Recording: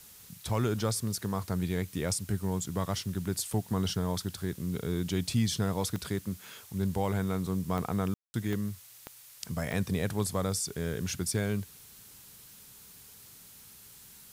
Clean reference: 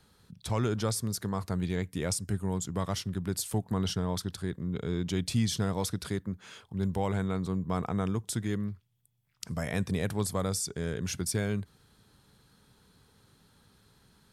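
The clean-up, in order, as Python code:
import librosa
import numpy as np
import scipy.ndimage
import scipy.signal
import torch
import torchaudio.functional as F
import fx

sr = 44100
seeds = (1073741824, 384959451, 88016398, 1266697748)

y = fx.fix_declick_ar(x, sr, threshold=10.0)
y = fx.fix_ambience(y, sr, seeds[0], print_start_s=8.87, print_end_s=9.37, start_s=8.14, end_s=8.34)
y = fx.noise_reduce(y, sr, print_start_s=8.82, print_end_s=9.32, reduce_db=11.0)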